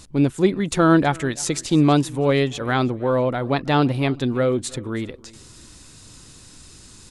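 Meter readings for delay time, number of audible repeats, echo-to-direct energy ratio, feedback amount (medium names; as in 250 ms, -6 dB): 324 ms, 2, -22.5 dB, 35%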